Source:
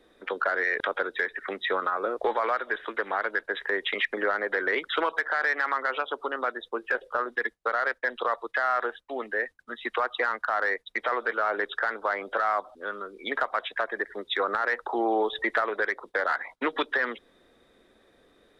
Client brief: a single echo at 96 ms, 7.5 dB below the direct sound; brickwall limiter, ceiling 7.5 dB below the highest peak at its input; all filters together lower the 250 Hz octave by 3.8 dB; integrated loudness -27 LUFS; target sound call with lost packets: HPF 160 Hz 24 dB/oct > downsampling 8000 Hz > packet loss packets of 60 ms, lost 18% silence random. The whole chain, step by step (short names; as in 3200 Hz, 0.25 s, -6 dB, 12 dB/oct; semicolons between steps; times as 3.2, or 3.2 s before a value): bell 250 Hz -6 dB; limiter -21 dBFS; HPF 160 Hz 24 dB/oct; echo 96 ms -7.5 dB; downsampling 8000 Hz; packet loss packets of 60 ms, lost 18% silence random; gain +6 dB